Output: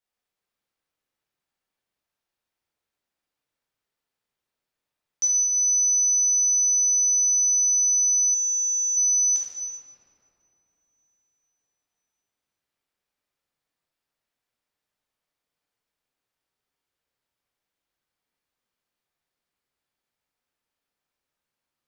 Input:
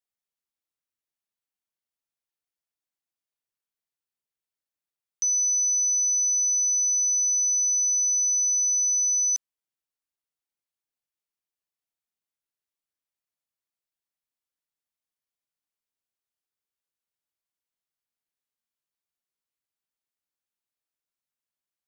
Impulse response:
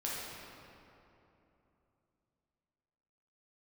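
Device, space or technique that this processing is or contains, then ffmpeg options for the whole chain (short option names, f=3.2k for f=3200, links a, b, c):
swimming-pool hall: -filter_complex "[1:a]atrim=start_sample=2205[a];[0:a][a]afir=irnorm=-1:irlink=0,highshelf=f=5.7k:g=-7.5,asettb=1/sr,asplit=3[b][c][d];[b]atrim=end=8.344[e];[c]atrim=start=8.34:end=8.97,asetpts=PTS-STARTPTS,afade=t=in:d=0.004:c=qsin,afade=t=out:st=0.626:d=0.004:c=qsin,bandreject=f=5.7k:w=7.3[f];[d]atrim=start=8.966[g];[e][f]acrossfade=d=0.004:c1=hsin:c2=qsin[h];[h][g]acrossfade=d=0.004:c1=qsin:c2=hsin,volume=7dB"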